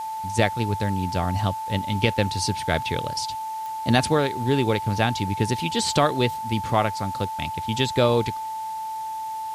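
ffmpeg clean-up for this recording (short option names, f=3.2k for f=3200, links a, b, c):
-af "adeclick=t=4,bandreject=f=880:w=30,afwtdn=0.0045"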